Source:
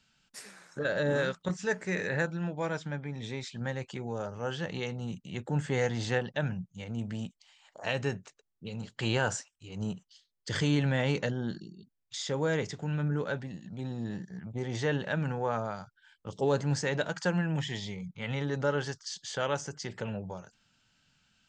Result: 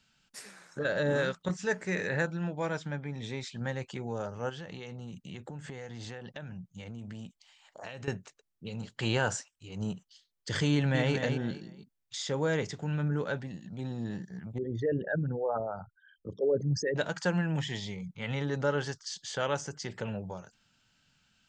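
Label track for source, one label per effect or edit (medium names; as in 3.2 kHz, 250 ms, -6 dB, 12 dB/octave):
4.490000	8.080000	compression 10:1, threshold -38 dBFS
10.710000	11.140000	echo throw 230 ms, feedback 25%, level -6.5 dB
14.580000	16.960000	resonances exaggerated exponent 3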